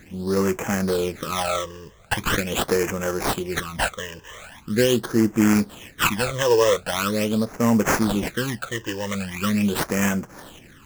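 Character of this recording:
aliases and images of a low sample rate 4,800 Hz, jitter 20%
phaser sweep stages 12, 0.42 Hz, lowest notch 220–3,900 Hz

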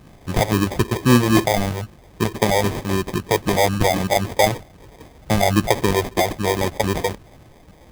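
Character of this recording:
phaser sweep stages 4, 3.8 Hz, lowest notch 220–1,100 Hz
aliases and images of a low sample rate 1,400 Hz, jitter 0%

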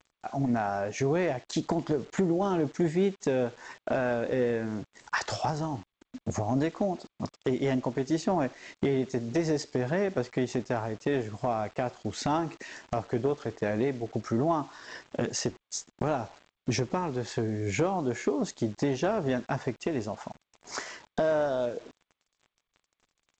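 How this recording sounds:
a quantiser's noise floor 8 bits, dither none
G.722

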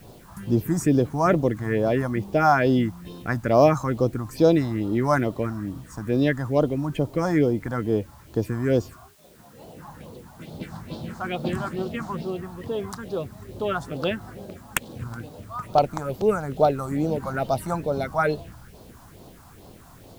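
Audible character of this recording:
phaser sweep stages 4, 2.3 Hz, lowest notch 420–2,000 Hz
a quantiser's noise floor 10 bits, dither triangular

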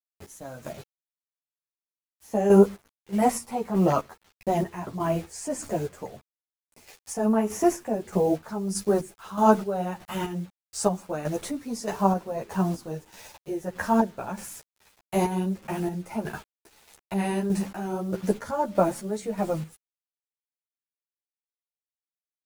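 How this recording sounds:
a quantiser's noise floor 8 bits, dither none
chopped level 1.6 Hz, depth 60%, duty 40%
a shimmering, thickened sound

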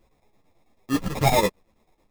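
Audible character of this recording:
a quantiser's noise floor 12 bits, dither triangular
chopped level 9.1 Hz, depth 60%, duty 70%
aliases and images of a low sample rate 1,500 Hz, jitter 0%
a shimmering, thickened sound

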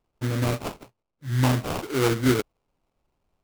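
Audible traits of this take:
aliases and images of a low sample rate 1,800 Hz, jitter 20%

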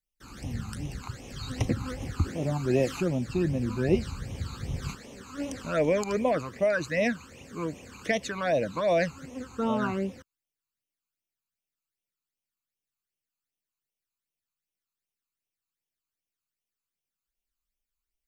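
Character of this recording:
phaser sweep stages 12, 2.6 Hz, lowest notch 560–1,500 Hz

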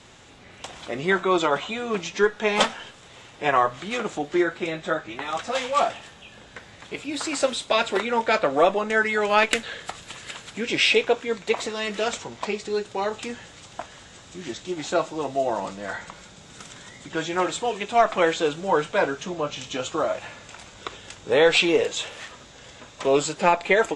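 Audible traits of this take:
background noise floor −48 dBFS
spectral slope −3.0 dB per octave

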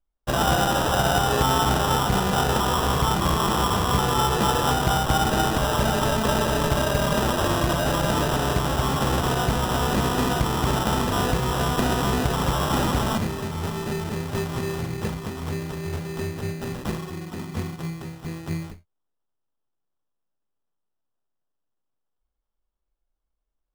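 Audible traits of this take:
aliases and images of a low sample rate 2,200 Hz, jitter 0%

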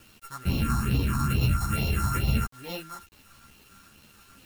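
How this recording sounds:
a buzz of ramps at a fixed pitch in blocks of 32 samples
phaser sweep stages 4, 2.3 Hz, lowest notch 460–1,500 Hz
a quantiser's noise floor 8 bits, dither none
a shimmering, thickened sound

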